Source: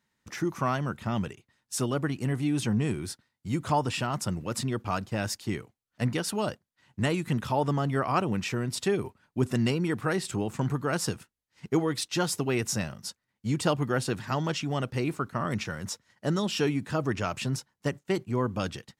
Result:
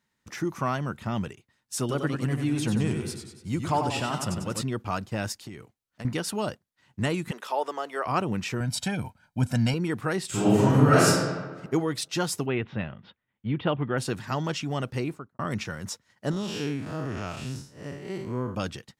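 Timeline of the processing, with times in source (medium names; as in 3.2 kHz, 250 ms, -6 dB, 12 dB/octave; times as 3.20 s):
1.79–4.62 s: modulated delay 94 ms, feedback 53%, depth 104 cents, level -6 dB
5.32–6.05 s: compression, threshold -36 dBFS
7.31–8.06 s: high-pass 410 Hz 24 dB/octave
8.60–9.74 s: comb 1.3 ms, depth 87%
10.27–11.07 s: reverb throw, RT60 1.4 s, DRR -10.5 dB
12.46–13.98 s: Chebyshev low-pass 3.5 kHz, order 5
14.96–15.39 s: studio fade out
16.31–18.55 s: spectral blur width 161 ms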